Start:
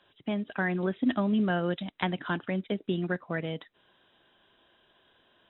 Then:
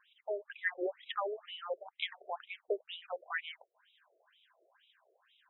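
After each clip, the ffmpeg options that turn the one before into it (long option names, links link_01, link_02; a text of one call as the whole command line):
ffmpeg -i in.wav -af "afftfilt=real='re*between(b*sr/1024,480*pow(3100/480,0.5+0.5*sin(2*PI*2.1*pts/sr))/1.41,480*pow(3100/480,0.5+0.5*sin(2*PI*2.1*pts/sr))*1.41)':imag='im*between(b*sr/1024,480*pow(3100/480,0.5+0.5*sin(2*PI*2.1*pts/sr))/1.41,480*pow(3100/480,0.5+0.5*sin(2*PI*2.1*pts/sr))*1.41)':win_size=1024:overlap=0.75,volume=1dB" out.wav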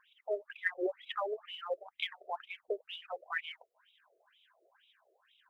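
ffmpeg -i in.wav -af "aphaser=in_gain=1:out_gain=1:delay=4.8:decay=0.36:speed=1.5:type=triangular" out.wav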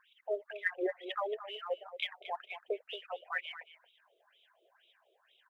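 ffmpeg -i in.wav -filter_complex "[0:a]asplit=2[link_01][link_02];[link_02]adelay=227.4,volume=-12dB,highshelf=frequency=4000:gain=-5.12[link_03];[link_01][link_03]amix=inputs=2:normalize=0" out.wav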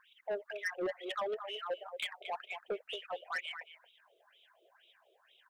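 ffmpeg -i in.wav -af "asoftclip=type=tanh:threshold=-33dB,volume=2.5dB" out.wav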